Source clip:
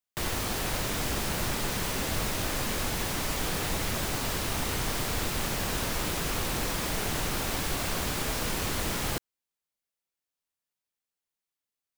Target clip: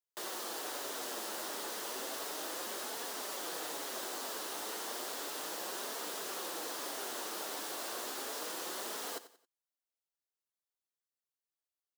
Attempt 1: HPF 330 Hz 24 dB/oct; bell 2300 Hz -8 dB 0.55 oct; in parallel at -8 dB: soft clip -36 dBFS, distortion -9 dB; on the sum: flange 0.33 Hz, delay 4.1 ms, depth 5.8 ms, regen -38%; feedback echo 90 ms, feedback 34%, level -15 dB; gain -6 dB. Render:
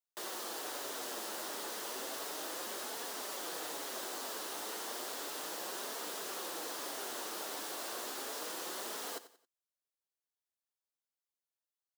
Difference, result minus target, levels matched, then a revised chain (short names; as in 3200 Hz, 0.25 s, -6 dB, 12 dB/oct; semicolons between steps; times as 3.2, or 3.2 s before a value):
soft clip: distortion +9 dB
HPF 330 Hz 24 dB/oct; bell 2300 Hz -8 dB 0.55 oct; in parallel at -8 dB: soft clip -27.5 dBFS, distortion -18 dB; on the sum: flange 0.33 Hz, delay 4.1 ms, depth 5.8 ms, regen -38%; feedback echo 90 ms, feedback 34%, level -15 dB; gain -6 dB